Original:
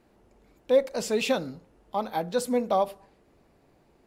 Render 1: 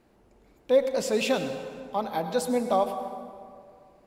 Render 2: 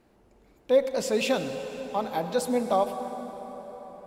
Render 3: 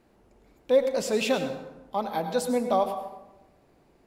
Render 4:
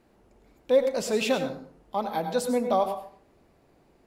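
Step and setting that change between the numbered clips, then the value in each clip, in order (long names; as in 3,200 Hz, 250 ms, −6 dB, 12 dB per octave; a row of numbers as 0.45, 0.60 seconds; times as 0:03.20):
dense smooth reverb, RT60: 2.2, 5.3, 1, 0.5 seconds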